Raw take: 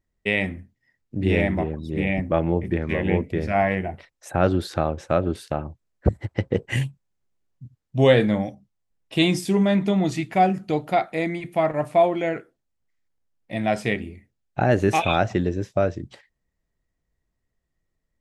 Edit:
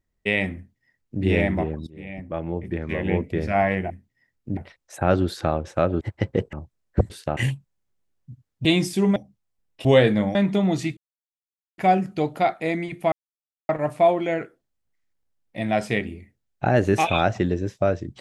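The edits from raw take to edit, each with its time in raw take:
0.56–1.23 s: copy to 3.90 s
1.87–3.39 s: fade in, from -20 dB
5.34–5.61 s: swap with 6.18–6.70 s
7.98–8.48 s: swap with 9.17–9.68 s
10.30 s: insert silence 0.81 s
11.64 s: insert silence 0.57 s

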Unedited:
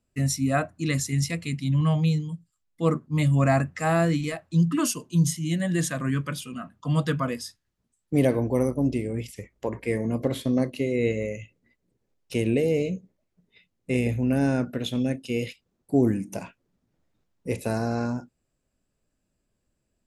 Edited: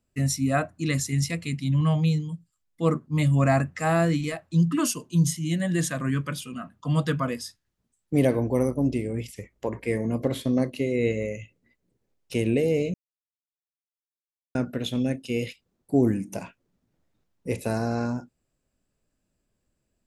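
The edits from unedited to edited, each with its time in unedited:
12.94–14.55 s: mute

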